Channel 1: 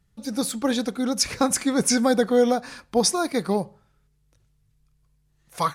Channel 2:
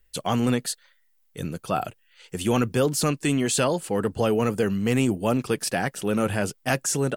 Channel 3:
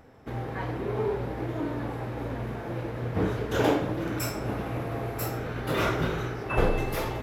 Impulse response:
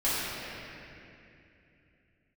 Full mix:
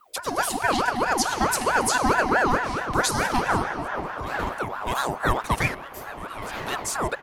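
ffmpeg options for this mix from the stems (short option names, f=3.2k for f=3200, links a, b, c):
-filter_complex "[0:a]alimiter=limit=-14.5dB:level=0:latency=1:release=175,volume=2dB,asplit=3[a][b][c];[b]volume=-14dB[d];[1:a]aecho=1:1:1.9:0.65,volume=2.5dB[e];[2:a]adelay=750,volume=-4.5dB[f];[c]apad=whole_len=315894[g];[e][g]sidechaincompress=threshold=-45dB:ratio=4:attack=16:release=940[h];[3:a]atrim=start_sample=2205[i];[d][i]afir=irnorm=-1:irlink=0[j];[a][h][f][j]amix=inputs=4:normalize=0,aeval=exprs='val(0)*sin(2*PI*870*n/s+870*0.45/4.6*sin(2*PI*4.6*n/s))':c=same"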